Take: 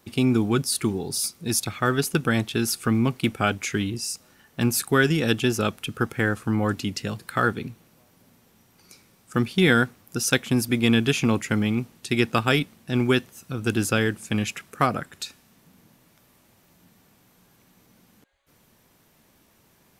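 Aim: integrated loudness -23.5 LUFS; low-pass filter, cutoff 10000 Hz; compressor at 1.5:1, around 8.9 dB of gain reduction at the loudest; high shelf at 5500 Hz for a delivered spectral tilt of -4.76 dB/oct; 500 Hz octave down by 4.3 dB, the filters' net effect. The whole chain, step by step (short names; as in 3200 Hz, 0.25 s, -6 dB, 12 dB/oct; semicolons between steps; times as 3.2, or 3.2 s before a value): LPF 10000 Hz; bell 500 Hz -6 dB; high shelf 5500 Hz -5 dB; compressor 1.5:1, threshold -42 dBFS; gain +10 dB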